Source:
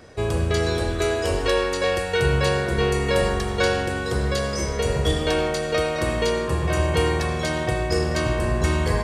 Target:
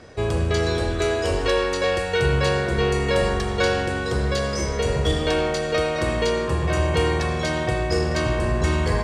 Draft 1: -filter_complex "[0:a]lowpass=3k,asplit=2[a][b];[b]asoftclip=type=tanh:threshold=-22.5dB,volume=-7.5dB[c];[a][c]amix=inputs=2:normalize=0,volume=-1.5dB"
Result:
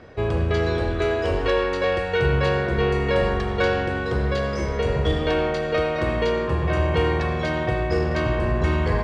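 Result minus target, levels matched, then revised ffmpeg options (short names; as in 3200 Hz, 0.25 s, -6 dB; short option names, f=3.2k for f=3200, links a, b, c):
8000 Hz band -13.0 dB
-filter_complex "[0:a]lowpass=8.3k,asplit=2[a][b];[b]asoftclip=type=tanh:threshold=-22.5dB,volume=-7.5dB[c];[a][c]amix=inputs=2:normalize=0,volume=-1.5dB"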